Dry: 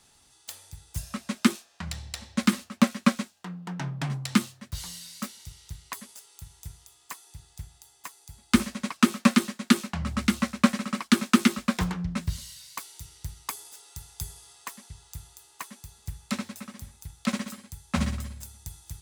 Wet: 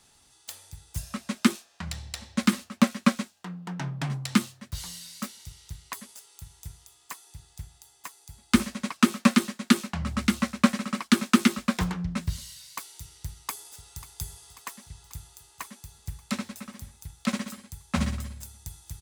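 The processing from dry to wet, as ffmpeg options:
ffmpeg -i in.wav -filter_complex "[0:a]asplit=2[link_01][link_02];[link_02]afade=type=in:start_time=13.14:duration=0.01,afade=type=out:start_time=14.06:duration=0.01,aecho=0:1:540|1080|1620|2160|2700|3240|3780|4320:0.16788|0.117516|0.0822614|0.057583|0.0403081|0.0282157|0.019751|0.0138257[link_03];[link_01][link_03]amix=inputs=2:normalize=0" out.wav

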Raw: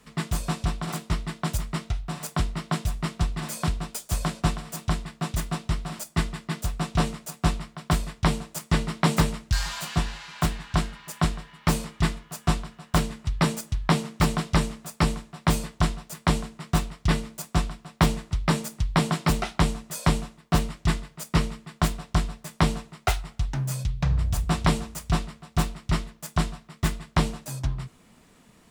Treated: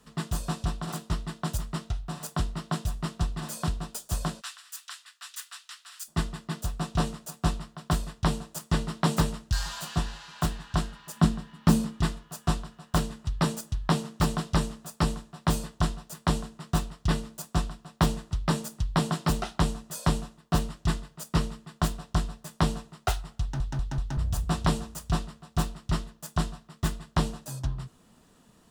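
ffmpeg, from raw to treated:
ffmpeg -i in.wav -filter_complex "[0:a]asplit=3[link_01][link_02][link_03];[link_01]afade=type=out:start_time=4.4:duration=0.02[link_04];[link_02]highpass=frequency=1500:width=0.5412,highpass=frequency=1500:width=1.3066,afade=type=in:start_time=4.4:duration=0.02,afade=type=out:start_time=6.07:duration=0.02[link_05];[link_03]afade=type=in:start_time=6.07:duration=0.02[link_06];[link_04][link_05][link_06]amix=inputs=3:normalize=0,asettb=1/sr,asplit=3[link_07][link_08][link_09];[link_07]atrim=end=11.164[link_10];[link_08]atrim=start=11.16:end=12.01,asetpts=PTS-STARTPTS,afade=type=in:duration=0.004:curve=qsin,afade=type=out:start_time=0.846:duration=0.004:curve=qsin,equalizer=frequency=220:width_type=o:width=0.87:gain=12.5[link_11];[link_09]atrim=start=12.006[link_12];[link_10][link_11]acrossfade=duration=0.004:curve1=hsin:curve2=qsin[link_13];[link_13][link_12]acrossfade=duration=0.004:curve1=qsin:curve2=hsin,asplit=5[link_14][link_15][link_16][link_17][link_18];[link_14]atrim=end=23.602[link_19];[link_15]atrim=start=23.408:end=23.602[link_20];[link_16]atrim=start=23.408:end=23.602[link_21];[link_17]atrim=start=23.408:end=23.602[link_22];[link_18]atrim=start=24.168[link_23];[link_19][link_20]acrossfade=duration=0.004:curve1=hsin:curve2=hsin[link_24];[link_24][link_21]acrossfade=duration=0.004:curve1=hsin:curve2=hsin[link_25];[link_25][link_22]acrossfade=duration=0.004:curve1=hsin:curve2=hsin[link_26];[link_26][link_23]acrossfade=duration=0.004:curve1=hsin:curve2=hsin,equalizer=frequency=2200:width_type=o:width=0.29:gain=-11,volume=-3dB" out.wav

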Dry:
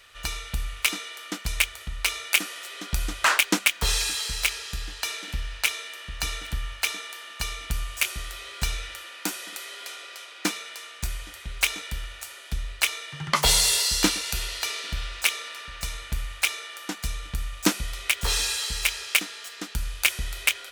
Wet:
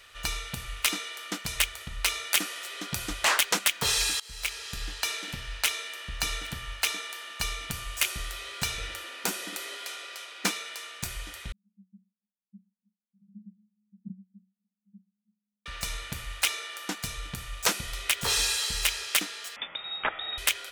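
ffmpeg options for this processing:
ffmpeg -i in.wav -filter_complex "[0:a]asettb=1/sr,asplit=3[link_01][link_02][link_03];[link_01]atrim=end=8.784[link_04];[link_02]atrim=start=8.78:end=9.77,asetpts=PTS-STARTPTS,afade=type=in:duration=0.004:curve=qsin,afade=type=out:start_time=0.986:duration=0.004:curve=qsin,equalizer=frequency=180:width=0.49:gain=9.5[link_05];[link_03]atrim=start=9.766[link_06];[link_04][link_05]acrossfade=duration=0.004:curve1=hsin:curve2=qsin[link_07];[link_07][link_06]acrossfade=duration=0.004:curve1=qsin:curve2=hsin,asettb=1/sr,asplit=3[link_08][link_09][link_10];[link_08]atrim=end=11.524[link_11];[link_09]atrim=start=11.52:end=15.66,asetpts=PTS-STARTPTS,afade=type=in:duration=0.004:curve=qsin,afade=type=out:start_time=4.136:duration=0.004:curve=qsin,asuperpass=centerf=200:order=8:qfactor=7[link_12];[link_10]atrim=start=15.656[link_13];[link_11][link_12]acrossfade=duration=0.004:curve1=hsin:curve2=qsin[link_14];[link_14][link_13]acrossfade=duration=0.004:curve1=qsin:curve2=hsin,asettb=1/sr,asplit=3[link_15][link_16][link_17];[link_15]atrim=end=19.564[link_18];[link_16]atrim=start=19.56:end=20.38,asetpts=PTS-STARTPTS,afade=type=in:duration=0.004:curve=qsin,afade=type=out:start_time=0.816:duration=0.004:curve=qsin,lowpass=frequency=3200:width_type=q:width=0.5098,lowpass=frequency=3200:width_type=q:width=0.6013,lowpass=frequency=3200:width_type=q:width=0.9,lowpass=frequency=3200:width_type=q:width=2.563,afreqshift=-3800[link_19];[link_17]atrim=start=20.376[link_20];[link_18][link_19]acrossfade=duration=0.004:curve1=hsin:curve2=qsin[link_21];[link_21][link_20]acrossfade=duration=0.004:curve1=qsin:curve2=hsin,asplit=2[link_22][link_23];[link_22]atrim=end=4.2,asetpts=PTS-STARTPTS,afade=type=out:start_time=4.196:duration=0.004:curve=hsin:silence=0.0668344[link_24];[link_23]atrim=start=4.2,asetpts=PTS-STARTPTS,afade=type=in:duration=0.63:silence=0.0668344[link_25];[link_24][link_25]concat=n=2:v=0:a=1,afftfilt=real='re*lt(hypot(re,im),0.355)':imag='im*lt(hypot(re,im),0.355)':win_size=1024:overlap=0.75" out.wav

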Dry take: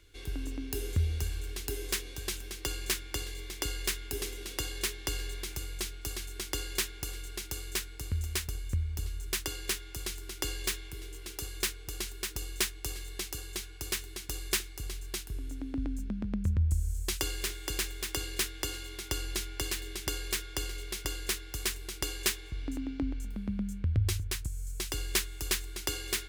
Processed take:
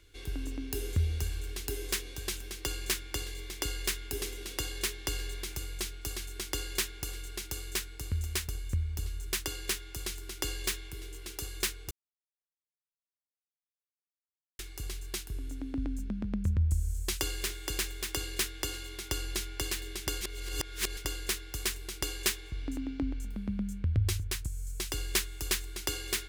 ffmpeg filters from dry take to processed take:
ffmpeg -i in.wav -filter_complex "[0:a]asplit=5[link_01][link_02][link_03][link_04][link_05];[link_01]atrim=end=11.91,asetpts=PTS-STARTPTS,afade=type=out:start_time=11.906:duration=0.004:curve=hsin[link_06];[link_02]atrim=start=11.91:end=14.59,asetpts=PTS-STARTPTS,volume=0[link_07];[link_03]atrim=start=14.59:end=20.212,asetpts=PTS-STARTPTS,afade=type=in:duration=0.004:curve=hsin[link_08];[link_04]atrim=start=20.208:end=20.972,asetpts=PTS-STARTPTS,areverse[link_09];[link_05]atrim=start=20.968[link_10];[link_06][link_07][link_08]concat=n=3:v=0:a=1[link_11];[link_11][link_09]acrossfade=duration=0.004:curve1=hsin:curve2=hsin[link_12];[link_12][link_10]acrossfade=duration=0.004:curve1=hsin:curve2=hsin" out.wav

